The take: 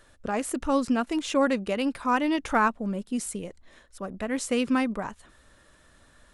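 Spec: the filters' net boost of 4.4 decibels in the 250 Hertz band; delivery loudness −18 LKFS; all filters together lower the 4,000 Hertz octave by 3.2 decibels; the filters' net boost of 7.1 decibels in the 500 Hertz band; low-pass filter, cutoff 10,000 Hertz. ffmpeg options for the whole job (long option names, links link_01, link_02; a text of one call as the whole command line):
ffmpeg -i in.wav -af "lowpass=10000,equalizer=frequency=250:width_type=o:gain=3,equalizer=frequency=500:width_type=o:gain=7.5,equalizer=frequency=4000:width_type=o:gain=-5,volume=5dB" out.wav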